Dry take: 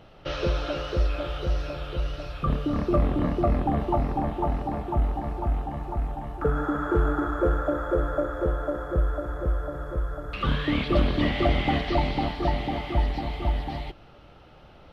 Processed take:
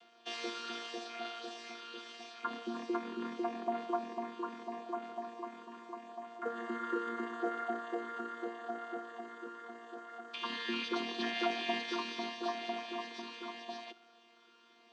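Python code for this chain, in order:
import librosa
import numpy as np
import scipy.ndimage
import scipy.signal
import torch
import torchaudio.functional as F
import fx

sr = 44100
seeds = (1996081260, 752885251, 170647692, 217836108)

y = fx.chord_vocoder(x, sr, chord='bare fifth', root=58)
y = np.diff(y, prepend=0.0)
y = y * 10.0 ** (13.0 / 20.0)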